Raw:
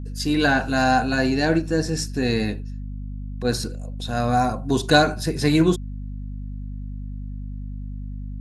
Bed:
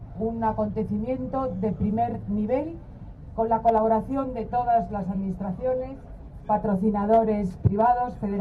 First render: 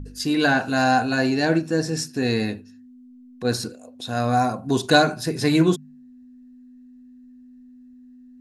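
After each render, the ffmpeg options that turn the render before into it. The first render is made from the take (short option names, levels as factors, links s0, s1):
-af "bandreject=f=50:t=h:w=4,bandreject=f=100:t=h:w=4,bandreject=f=150:t=h:w=4,bandreject=f=200:t=h:w=4"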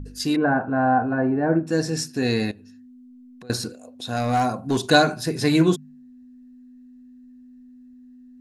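-filter_complex "[0:a]asettb=1/sr,asplit=3[s0][s1][s2];[s0]atrim=end=0.364[s3];[s1]atrim=start=0.36:end=1.67,asetpts=PTS-STARTPTS,afade=t=in:d=0.004:c=qsin,afade=t=out:st=1.306:d=0.004:c=qsin,lowpass=f=1400:w=0.5412,lowpass=f=1400:w=1.3066[s4];[s2]atrim=start=1.666[s5];[s3][s4]acrossfade=d=0.004:c1=hsin:c2=qsin[s6];[s6][s5]acrossfade=d=0.004:c1=qsin:c2=hsin,asettb=1/sr,asplit=3[s7][s8][s9];[s7]atrim=end=2.514[s10];[s8]atrim=start=2.51:end=3.5,asetpts=PTS-STARTPTS,afade=t=in:d=0.004:c=qsin,afade=t=out:st=0.986:d=0.004:c=qsin,acompressor=threshold=0.00891:ratio=8:attack=3.2:release=140:knee=1:detection=peak[s11];[s9]atrim=start=3.496[s12];[s10][s11]acrossfade=d=0.004:c1=hsin:c2=qsin[s13];[s13][s12]acrossfade=d=0.004:c1=qsin:c2=hsin,asettb=1/sr,asplit=3[s14][s15][s16];[s14]atrim=end=4.164[s17];[s15]atrim=start=4.16:end=4.79,asetpts=PTS-STARTPTS,afade=t=in:d=0.004:c=qsin,afade=t=out:st=0.626:d=0.004:c=qsin,asoftclip=type=hard:threshold=0.168[s18];[s16]atrim=start=4.786[s19];[s17][s18]acrossfade=d=0.004:c1=hsin:c2=qsin[s20];[s20][s19]acrossfade=d=0.004:c1=qsin:c2=hsin"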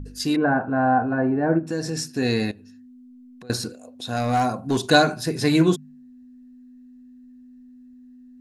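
-filter_complex "[0:a]asplit=3[s0][s1][s2];[s0]afade=t=out:st=1.58:d=0.02[s3];[s1]acompressor=threshold=0.0708:ratio=2.5:attack=3.2:release=140:knee=1:detection=peak,afade=t=in:st=1.58:d=0.02,afade=t=out:st=2.08:d=0.02[s4];[s2]afade=t=in:st=2.08:d=0.02[s5];[s3][s4][s5]amix=inputs=3:normalize=0"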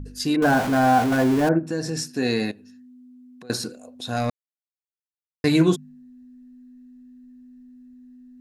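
-filter_complex "[0:a]asettb=1/sr,asplit=3[s0][s1][s2];[s0]atrim=end=0.424[s3];[s1]atrim=start=0.42:end=1.49,asetpts=PTS-STARTPTS,afade=t=in:d=0.004:c=qsin,afade=t=out:st=1.066:d=0.004:c=qsin,aeval=exprs='val(0)+0.5*0.0668*sgn(val(0))':c=same[s4];[s2]atrim=start=1.486[s5];[s3][s4]acrossfade=d=0.004:c1=hsin:c2=qsin[s6];[s6][s5]acrossfade=d=0.004:c1=qsin:c2=hsin,asettb=1/sr,asplit=3[s7][s8][s9];[s7]atrim=end=2.044[s10];[s8]atrim=start=2.04:end=3.77,asetpts=PTS-STARTPTS,afade=t=in:d=0.004:c=qsin,afade=t=out:st=1.726:d=0.004:c=qsin,highpass=150[s11];[s9]atrim=start=3.766[s12];[s10][s11]acrossfade=d=0.004:c1=hsin:c2=qsin[s13];[s13][s12]acrossfade=d=0.004:c1=qsin:c2=hsin,asplit=3[s14][s15][s16];[s14]atrim=end=4.3,asetpts=PTS-STARTPTS,afade=t=out:st=4.296:d=0.004:c=hsin[s17];[s15]atrim=start=4.3:end=5.44,asetpts=PTS-STARTPTS,volume=0[s18];[s16]atrim=start=5.44,asetpts=PTS-STARTPTS,afade=t=in:d=0.004:c=hsin[s19];[s17][s18][s19]concat=n=3:v=0:a=1"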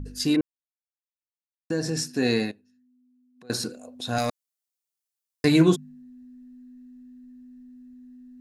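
-filter_complex "[0:a]asettb=1/sr,asplit=3[s0][s1][s2];[s0]atrim=end=4.184[s3];[s1]atrim=start=4.18:end=5.45,asetpts=PTS-STARTPTS,afade=t=in:d=0.004:c=qsin,afade=t=out:st=1.266:d=0.004:c=qsin,bass=f=250:g=-7,treble=f=4000:g=10[s4];[s2]atrim=start=5.446[s5];[s3][s4]acrossfade=d=0.004:c1=hsin:c2=qsin[s6];[s6][s5]acrossfade=d=0.004:c1=qsin:c2=hsin,asplit=5[s7][s8][s9][s10][s11];[s7]atrim=end=0.41,asetpts=PTS-STARTPTS,afade=t=out:st=0.406:d=0.004:c=hsin[s12];[s8]atrim=start=0.41:end=1.7,asetpts=PTS-STARTPTS,volume=0[s13];[s9]atrim=start=1.7:end=2.62,asetpts=PTS-STARTPTS,afade=t=in:d=0.004:c=hsin,afade=t=out:st=0.67:d=0.25:silence=0.158489[s14];[s10]atrim=start=2.62:end=3.34,asetpts=PTS-STARTPTS,volume=0.158[s15];[s11]atrim=start=3.34,asetpts=PTS-STARTPTS,afade=t=in:d=0.25:silence=0.158489[s16];[s12][s13][s14][s15][s16]concat=n=5:v=0:a=1"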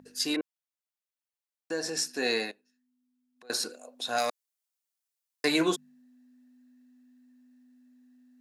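-af "highpass=510"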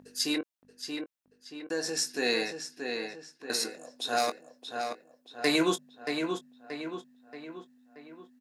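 -filter_complex "[0:a]asplit=2[s0][s1];[s1]adelay=21,volume=0.251[s2];[s0][s2]amix=inputs=2:normalize=0,asplit=2[s3][s4];[s4]adelay=629,lowpass=f=3800:p=1,volume=0.531,asplit=2[s5][s6];[s6]adelay=629,lowpass=f=3800:p=1,volume=0.51,asplit=2[s7][s8];[s8]adelay=629,lowpass=f=3800:p=1,volume=0.51,asplit=2[s9][s10];[s10]adelay=629,lowpass=f=3800:p=1,volume=0.51,asplit=2[s11][s12];[s12]adelay=629,lowpass=f=3800:p=1,volume=0.51,asplit=2[s13][s14];[s14]adelay=629,lowpass=f=3800:p=1,volume=0.51[s15];[s5][s7][s9][s11][s13][s15]amix=inputs=6:normalize=0[s16];[s3][s16]amix=inputs=2:normalize=0"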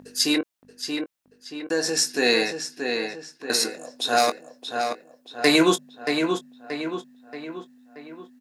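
-af "volume=2.51"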